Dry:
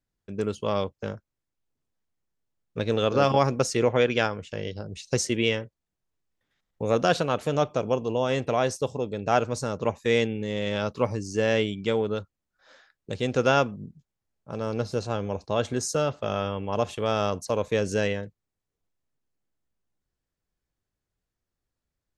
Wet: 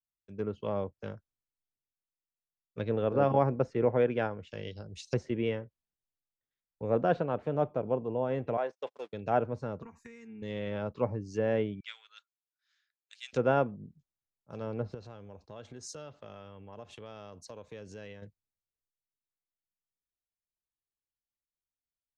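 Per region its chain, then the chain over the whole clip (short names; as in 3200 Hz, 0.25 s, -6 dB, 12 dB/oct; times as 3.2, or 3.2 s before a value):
8.57–9.13 zero-crossing step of -37 dBFS + gate -29 dBFS, range -41 dB + HPF 530 Hz
9.82–10.42 comb 4.3 ms, depth 92% + compressor 16:1, threshold -28 dBFS + fixed phaser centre 1400 Hz, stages 4
11.8–13.33 HPF 1500 Hz 24 dB/oct + high shelf 2900 Hz -6.5 dB
14.94–18.22 high shelf 5700 Hz -11.5 dB + compressor 3:1, threshold -35 dBFS
whole clip: treble ducked by the level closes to 1400 Hz, closed at -23 dBFS; dynamic EQ 1200 Hz, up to -5 dB, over -43 dBFS, Q 3.9; three-band expander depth 40%; gain -5.5 dB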